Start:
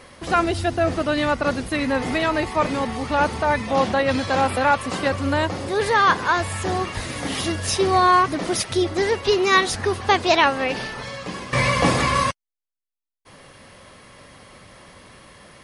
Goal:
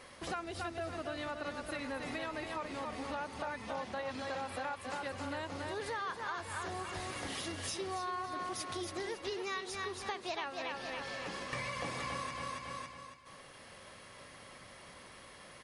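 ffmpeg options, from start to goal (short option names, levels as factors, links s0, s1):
-filter_complex "[0:a]lowshelf=f=350:g=-6,asplit=2[s0][s1];[s1]aecho=0:1:277|554|831|1108:0.501|0.185|0.0686|0.0254[s2];[s0][s2]amix=inputs=2:normalize=0,acompressor=threshold=0.0282:ratio=5,volume=0.447"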